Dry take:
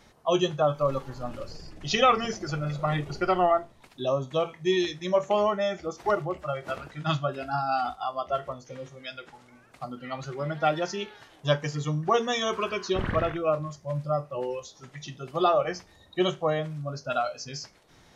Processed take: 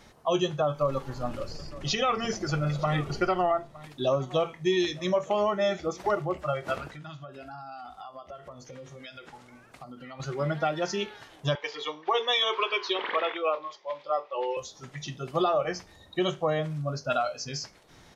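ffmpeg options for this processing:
ffmpeg -i in.wav -filter_complex "[0:a]asplit=3[link_01][link_02][link_03];[link_01]afade=type=out:start_time=1.58:duration=0.02[link_04];[link_02]aecho=1:1:911:0.075,afade=type=in:start_time=1.58:duration=0.02,afade=type=out:start_time=6.05:duration=0.02[link_05];[link_03]afade=type=in:start_time=6.05:duration=0.02[link_06];[link_04][link_05][link_06]amix=inputs=3:normalize=0,asettb=1/sr,asplit=3[link_07][link_08][link_09];[link_07]atrim=end=6.924[link_10];[link_08]atrim=start=6.92:end=10.2,asetpts=PTS-STARTPTS,afade=type=in:duration=0.004:curve=qsin,afade=type=out:start_time=3.276:duration=0.004:curve=qsin,acompressor=threshold=-43dB:ratio=6:attack=3.2:release=140:knee=1:detection=peak[link_11];[link_09]atrim=start=10.196[link_12];[link_10][link_11]acrossfade=duration=0.004:curve1=hsin:curve2=qsin[link_13];[link_13][link_12]acrossfade=duration=0.004:curve1=qsin:curve2=hsin,asettb=1/sr,asplit=3[link_14][link_15][link_16];[link_14]atrim=end=11.554[link_17];[link_15]atrim=start=11.55:end=14.57,asetpts=PTS-STARTPTS,afade=type=in:duration=0.004:curve=qsin,afade=type=out:start_time=3.016:duration=0.004:curve=qsin,highpass=frequency=430:width=0.5412,highpass=frequency=430:width=1.3066,equalizer=frequency=430:width_type=q:width=4:gain=3,equalizer=frequency=640:width_type=q:width=4:gain=-6,equalizer=frequency=920:width_type=q:width=4:gain=6,equalizer=frequency=1500:width_type=q:width=4:gain=-4,equalizer=frequency=2200:width_type=q:width=4:gain=6,equalizer=frequency=3400:width_type=q:width=4:gain=9,lowpass=frequency=4800:width=0.5412,lowpass=frequency=4800:width=1.3066[link_18];[link_16]atrim=start=14.566[link_19];[link_17][link_18]acrossfade=duration=0.004:curve1=hsin:curve2=qsin[link_20];[link_20][link_19]acrossfade=duration=0.004:curve1=qsin:curve2=hsin,alimiter=limit=-18.5dB:level=0:latency=1:release=257,volume=2.5dB" out.wav

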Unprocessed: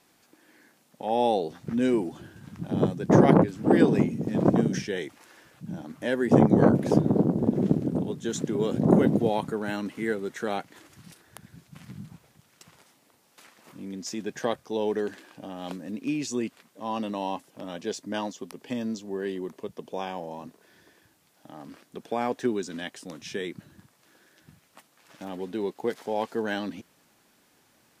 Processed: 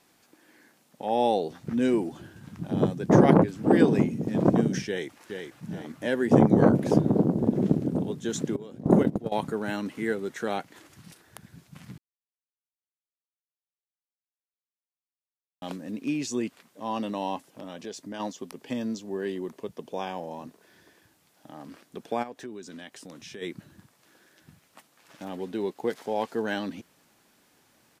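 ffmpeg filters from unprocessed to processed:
ffmpeg -i in.wav -filter_complex "[0:a]asplit=2[link_01][link_02];[link_02]afade=type=in:start_time=4.87:duration=0.01,afade=type=out:start_time=5.65:duration=0.01,aecho=0:1:420|840|1260|1680|2100:0.501187|0.200475|0.08019|0.032076|0.0128304[link_03];[link_01][link_03]amix=inputs=2:normalize=0,asettb=1/sr,asplit=3[link_04][link_05][link_06];[link_04]atrim=end=8.564[link_07];[link_05]atrim=start=8.56:end=9.32,asetpts=PTS-STARTPTS,afade=type=in:duration=0.004:curve=qsin,afade=type=out:start_time=0.756:duration=0.004:curve=qsin,agate=range=-16dB:threshold=-21dB:ratio=16:release=100:detection=peak[link_08];[link_06]atrim=start=9.316[link_09];[link_07][link_08]acrossfade=duration=0.004:curve1=hsin:curve2=qsin[link_10];[link_10][link_09]acrossfade=duration=0.004:curve1=qsin:curve2=hsin,asplit=3[link_11][link_12][link_13];[link_11]afade=type=out:start_time=17.47:duration=0.02[link_14];[link_12]acompressor=threshold=-36dB:ratio=2.5:attack=3.2:release=140:knee=1:detection=peak,afade=type=in:start_time=17.47:duration=0.02,afade=type=out:start_time=18.19:duration=0.02[link_15];[link_13]afade=type=in:start_time=18.19:duration=0.02[link_16];[link_14][link_15][link_16]amix=inputs=3:normalize=0,asplit=3[link_17][link_18][link_19];[link_17]afade=type=out:start_time=22.22:duration=0.02[link_20];[link_18]acompressor=threshold=-42dB:ratio=2.5:attack=3.2:release=140:knee=1:detection=peak,afade=type=in:start_time=22.22:duration=0.02,afade=type=out:start_time=23.41:duration=0.02[link_21];[link_19]afade=type=in:start_time=23.41:duration=0.02[link_22];[link_20][link_21][link_22]amix=inputs=3:normalize=0,asplit=3[link_23][link_24][link_25];[link_23]atrim=end=11.98,asetpts=PTS-STARTPTS,afade=type=out:start_time=11.976:duration=0.004:curve=hsin[link_26];[link_24]atrim=start=11.98:end=15.62,asetpts=PTS-STARTPTS,volume=0[link_27];[link_25]atrim=start=15.62,asetpts=PTS-STARTPTS,afade=type=in:duration=0.004:curve=hsin[link_28];[link_26][link_27][link_28]concat=n=3:v=0:a=1" out.wav

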